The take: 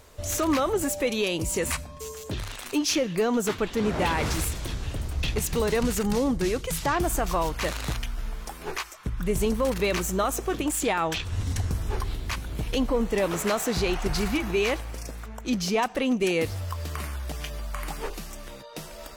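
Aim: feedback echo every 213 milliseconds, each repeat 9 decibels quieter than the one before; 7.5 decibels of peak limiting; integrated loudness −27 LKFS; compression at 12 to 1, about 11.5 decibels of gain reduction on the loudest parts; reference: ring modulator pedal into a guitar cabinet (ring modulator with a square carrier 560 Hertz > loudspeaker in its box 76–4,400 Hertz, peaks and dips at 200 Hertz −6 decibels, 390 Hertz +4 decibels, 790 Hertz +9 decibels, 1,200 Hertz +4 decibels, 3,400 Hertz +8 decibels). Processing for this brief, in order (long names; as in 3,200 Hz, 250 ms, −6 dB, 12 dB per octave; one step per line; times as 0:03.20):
downward compressor 12 to 1, threshold −32 dBFS
brickwall limiter −28 dBFS
repeating echo 213 ms, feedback 35%, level −9 dB
ring modulator with a square carrier 560 Hz
loudspeaker in its box 76–4,400 Hz, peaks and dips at 200 Hz −6 dB, 390 Hz +4 dB, 790 Hz +9 dB, 1,200 Hz +4 dB, 3,400 Hz +8 dB
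level +6.5 dB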